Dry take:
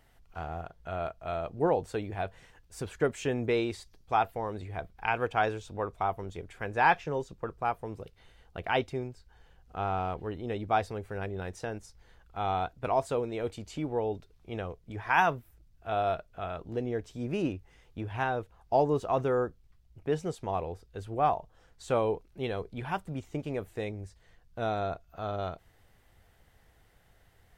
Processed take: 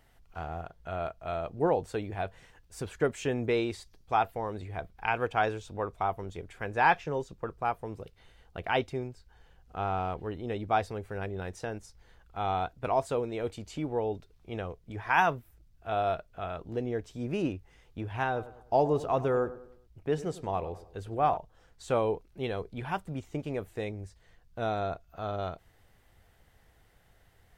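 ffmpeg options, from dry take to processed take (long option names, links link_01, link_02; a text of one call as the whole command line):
ffmpeg -i in.wav -filter_complex "[0:a]asettb=1/sr,asplit=3[link_01][link_02][link_03];[link_01]atrim=end=18.264[link_04];[link_02]atrim=start=18.26:end=21.37,asetpts=PTS-STARTPTS,afade=type=in:duration=0.004:curve=qsin,afade=type=out:start_time=3.106:duration=0.004:curve=qsin,asplit=2[link_05][link_06];[link_06]adelay=100,lowpass=frequency=2400:poles=1,volume=-15dB,asplit=2[link_07][link_08];[link_08]adelay=100,lowpass=frequency=2400:poles=1,volume=0.44,asplit=2[link_09][link_10];[link_10]adelay=100,lowpass=frequency=2400:poles=1,volume=0.44,asplit=2[link_11][link_12];[link_12]adelay=100,lowpass=frequency=2400:poles=1,volume=0.44[link_13];[link_05][link_07][link_09][link_11][link_13]amix=inputs=5:normalize=0,atrim=end_sample=137151[link_14];[link_03]atrim=start=21.366[link_15];[link_04][link_14]acrossfade=duration=0.004:curve1=hsin:curve2=qsin[link_16];[link_16][link_15]acrossfade=duration=0.004:curve1=qsin:curve2=hsin" out.wav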